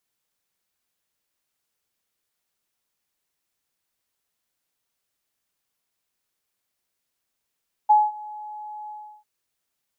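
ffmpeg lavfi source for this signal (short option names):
-f lavfi -i "aevalsrc='0.299*sin(2*PI*846*t)':d=1.347:s=44100,afade=t=in:d=0.015,afade=t=out:st=0.015:d=0.209:silence=0.0708,afade=t=out:st=1:d=0.347"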